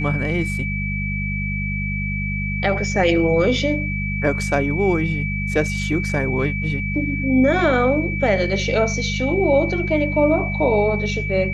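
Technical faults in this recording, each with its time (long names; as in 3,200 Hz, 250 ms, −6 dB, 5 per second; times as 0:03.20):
mains hum 50 Hz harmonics 4 −25 dBFS
whistle 2,300 Hz −26 dBFS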